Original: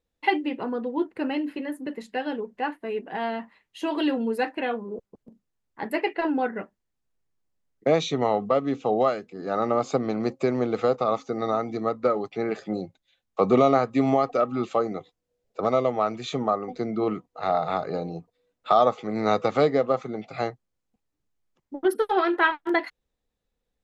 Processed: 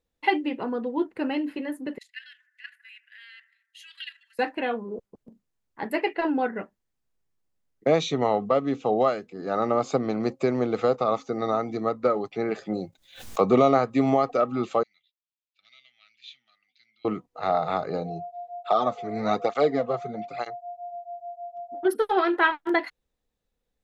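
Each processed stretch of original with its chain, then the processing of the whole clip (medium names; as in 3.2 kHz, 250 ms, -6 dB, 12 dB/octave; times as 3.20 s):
1.98–4.39 s: steep high-pass 1.7 kHz 48 dB/octave + level held to a coarse grid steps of 12 dB + bucket-brigade echo 77 ms, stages 1024, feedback 66%, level -16.5 dB
12.81–13.42 s: median filter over 3 samples + treble shelf 5.5 kHz +10 dB + swell ahead of each attack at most 120 dB/s
14.83–17.05 s: inverse Chebyshev high-pass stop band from 1.1 kHz, stop band 50 dB + distance through air 310 m
18.02–21.87 s: whistle 700 Hz -32 dBFS + cancelling through-zero flanger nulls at 1.1 Hz, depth 4.1 ms
whole clip: none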